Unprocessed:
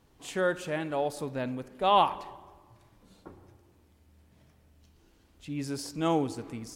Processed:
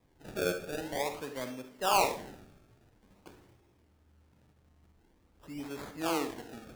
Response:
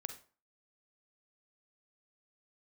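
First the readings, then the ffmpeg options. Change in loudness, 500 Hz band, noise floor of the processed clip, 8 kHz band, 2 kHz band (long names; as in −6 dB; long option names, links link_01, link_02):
−4.0 dB, −4.0 dB, −67 dBFS, can't be measured, −1.0 dB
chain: -filter_complex "[0:a]acrossover=split=230|710|4700[link_01][link_02][link_03][link_04];[link_01]acompressor=threshold=-52dB:ratio=6[link_05];[link_05][link_02][link_03][link_04]amix=inputs=4:normalize=0,acrusher=samples=30:mix=1:aa=0.000001:lfo=1:lforange=30:lforate=0.48[link_06];[1:a]atrim=start_sample=2205[link_07];[link_06][link_07]afir=irnorm=-1:irlink=0,volume=-1.5dB"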